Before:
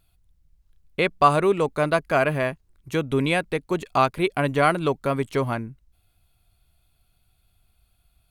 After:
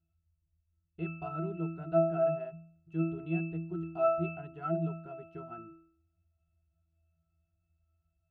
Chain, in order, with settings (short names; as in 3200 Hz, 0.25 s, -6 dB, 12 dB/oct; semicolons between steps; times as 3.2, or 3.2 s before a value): octave resonator E, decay 0.61 s; gain +5 dB